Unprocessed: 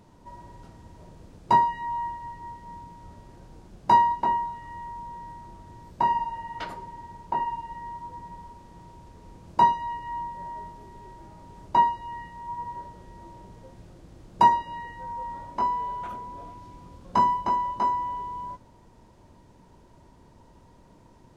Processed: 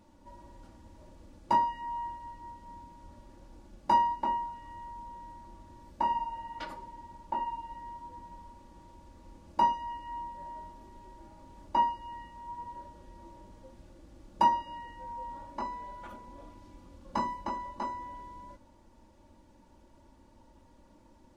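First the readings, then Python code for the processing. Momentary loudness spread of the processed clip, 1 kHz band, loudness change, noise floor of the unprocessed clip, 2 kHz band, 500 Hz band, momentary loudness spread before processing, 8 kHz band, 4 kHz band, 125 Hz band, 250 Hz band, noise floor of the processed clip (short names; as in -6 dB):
24 LU, -7.0 dB, -7.0 dB, -55 dBFS, -8.0 dB, -5.5 dB, 23 LU, n/a, -4.0 dB, -9.0 dB, -4.5 dB, -60 dBFS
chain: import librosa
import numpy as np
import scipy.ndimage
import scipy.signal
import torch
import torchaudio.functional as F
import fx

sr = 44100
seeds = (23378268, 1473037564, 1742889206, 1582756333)

y = x + 0.7 * np.pad(x, (int(3.5 * sr / 1000.0), 0))[:len(x)]
y = y * librosa.db_to_amplitude(-6.5)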